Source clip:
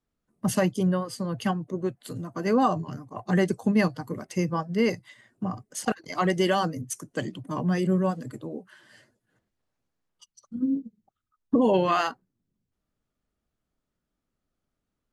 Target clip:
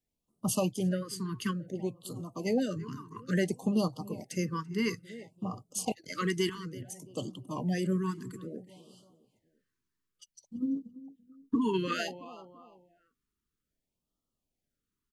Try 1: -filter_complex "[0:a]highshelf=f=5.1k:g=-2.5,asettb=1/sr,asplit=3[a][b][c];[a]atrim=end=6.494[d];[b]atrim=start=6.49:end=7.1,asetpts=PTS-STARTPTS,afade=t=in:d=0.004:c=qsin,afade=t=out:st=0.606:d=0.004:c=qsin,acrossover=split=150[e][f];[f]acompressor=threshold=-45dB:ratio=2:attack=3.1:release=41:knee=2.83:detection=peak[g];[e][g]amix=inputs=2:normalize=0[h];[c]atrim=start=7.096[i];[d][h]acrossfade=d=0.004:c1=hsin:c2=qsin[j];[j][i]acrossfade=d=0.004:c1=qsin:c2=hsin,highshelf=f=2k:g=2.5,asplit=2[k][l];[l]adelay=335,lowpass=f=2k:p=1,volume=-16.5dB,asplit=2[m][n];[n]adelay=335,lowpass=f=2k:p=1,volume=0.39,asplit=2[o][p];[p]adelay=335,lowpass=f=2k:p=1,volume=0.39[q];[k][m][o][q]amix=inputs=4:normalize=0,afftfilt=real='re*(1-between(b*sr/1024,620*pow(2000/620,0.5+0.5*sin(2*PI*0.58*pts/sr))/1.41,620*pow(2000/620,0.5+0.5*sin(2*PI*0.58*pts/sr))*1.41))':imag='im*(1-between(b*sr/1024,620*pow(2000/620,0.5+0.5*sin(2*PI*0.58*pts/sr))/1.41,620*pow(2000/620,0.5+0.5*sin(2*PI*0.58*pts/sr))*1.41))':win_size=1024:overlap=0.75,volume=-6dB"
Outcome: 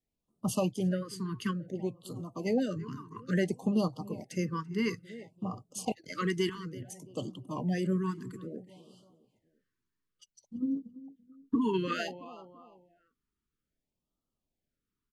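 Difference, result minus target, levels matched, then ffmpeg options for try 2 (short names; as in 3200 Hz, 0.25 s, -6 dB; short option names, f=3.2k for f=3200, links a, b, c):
8000 Hz band -5.0 dB
-filter_complex "[0:a]highshelf=f=5.1k:g=5,asettb=1/sr,asplit=3[a][b][c];[a]atrim=end=6.494[d];[b]atrim=start=6.49:end=7.1,asetpts=PTS-STARTPTS,afade=t=in:d=0.004:c=qsin,afade=t=out:st=0.606:d=0.004:c=qsin,acrossover=split=150[e][f];[f]acompressor=threshold=-45dB:ratio=2:attack=3.1:release=41:knee=2.83:detection=peak[g];[e][g]amix=inputs=2:normalize=0[h];[c]atrim=start=7.096[i];[d][h]acrossfade=d=0.004:c1=hsin:c2=qsin[j];[j][i]acrossfade=d=0.004:c1=qsin:c2=hsin,highshelf=f=2k:g=2.5,asplit=2[k][l];[l]adelay=335,lowpass=f=2k:p=1,volume=-16.5dB,asplit=2[m][n];[n]adelay=335,lowpass=f=2k:p=1,volume=0.39,asplit=2[o][p];[p]adelay=335,lowpass=f=2k:p=1,volume=0.39[q];[k][m][o][q]amix=inputs=4:normalize=0,afftfilt=real='re*(1-between(b*sr/1024,620*pow(2000/620,0.5+0.5*sin(2*PI*0.58*pts/sr))/1.41,620*pow(2000/620,0.5+0.5*sin(2*PI*0.58*pts/sr))*1.41))':imag='im*(1-between(b*sr/1024,620*pow(2000/620,0.5+0.5*sin(2*PI*0.58*pts/sr))/1.41,620*pow(2000/620,0.5+0.5*sin(2*PI*0.58*pts/sr))*1.41))':win_size=1024:overlap=0.75,volume=-6dB"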